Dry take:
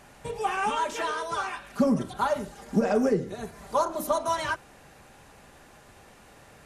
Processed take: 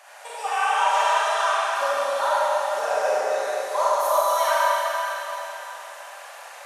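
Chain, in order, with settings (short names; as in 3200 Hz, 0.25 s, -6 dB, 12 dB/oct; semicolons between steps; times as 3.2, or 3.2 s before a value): Chebyshev high-pass 590 Hz, order 4; in parallel at +1.5 dB: compressor, threshold -41 dBFS, peak gain reduction 19 dB; on the sum: echo with dull and thin repeats by turns 0.109 s, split 1200 Hz, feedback 60%, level -4 dB; Schroeder reverb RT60 3.6 s, combs from 33 ms, DRR -8.5 dB; gain -3 dB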